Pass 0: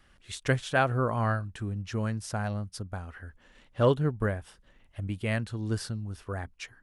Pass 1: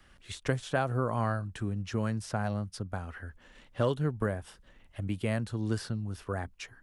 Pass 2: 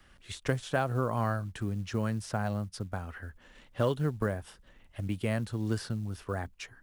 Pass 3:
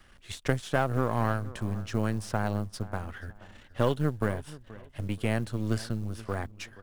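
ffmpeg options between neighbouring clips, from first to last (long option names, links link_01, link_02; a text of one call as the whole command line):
ffmpeg -i in.wav -filter_complex "[0:a]acrossover=split=110|1400|4200[link_01][link_02][link_03][link_04];[link_01]acompressor=threshold=-44dB:ratio=4[link_05];[link_02]acompressor=threshold=-28dB:ratio=4[link_06];[link_03]acompressor=threshold=-47dB:ratio=4[link_07];[link_04]acompressor=threshold=-49dB:ratio=4[link_08];[link_05][link_06][link_07][link_08]amix=inputs=4:normalize=0,volume=2dB" out.wav
ffmpeg -i in.wav -af "acrusher=bits=8:mode=log:mix=0:aa=0.000001" out.wav
ffmpeg -i in.wav -filter_complex "[0:a]aeval=exprs='if(lt(val(0),0),0.447*val(0),val(0))':channel_layout=same,asplit=2[link_01][link_02];[link_02]adelay=478,lowpass=frequency=3000:poles=1,volume=-18dB,asplit=2[link_03][link_04];[link_04]adelay=478,lowpass=frequency=3000:poles=1,volume=0.33,asplit=2[link_05][link_06];[link_06]adelay=478,lowpass=frequency=3000:poles=1,volume=0.33[link_07];[link_01][link_03][link_05][link_07]amix=inputs=4:normalize=0,volume=4dB" out.wav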